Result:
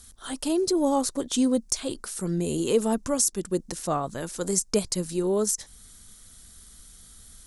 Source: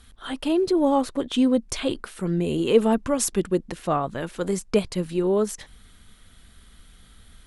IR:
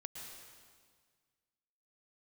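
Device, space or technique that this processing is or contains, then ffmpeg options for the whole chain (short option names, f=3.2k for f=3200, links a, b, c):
over-bright horn tweeter: -af "highshelf=f=4.2k:t=q:w=1.5:g=12.5,alimiter=limit=-8dB:level=0:latency=1:release=359,volume=-3dB"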